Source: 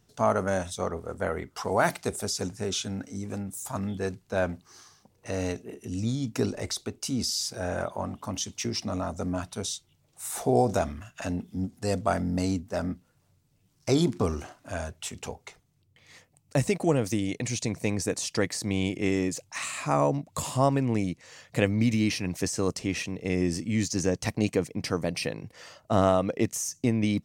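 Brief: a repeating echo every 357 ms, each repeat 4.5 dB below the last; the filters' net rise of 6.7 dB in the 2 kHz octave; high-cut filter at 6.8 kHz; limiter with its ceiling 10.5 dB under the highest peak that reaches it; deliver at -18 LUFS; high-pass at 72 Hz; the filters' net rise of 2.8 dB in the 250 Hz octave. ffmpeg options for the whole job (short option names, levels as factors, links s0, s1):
-af "highpass=72,lowpass=6800,equalizer=f=250:t=o:g=3.5,equalizer=f=2000:t=o:g=8.5,alimiter=limit=0.211:level=0:latency=1,aecho=1:1:357|714|1071|1428|1785|2142|2499|2856|3213:0.596|0.357|0.214|0.129|0.0772|0.0463|0.0278|0.0167|0.01,volume=2.82"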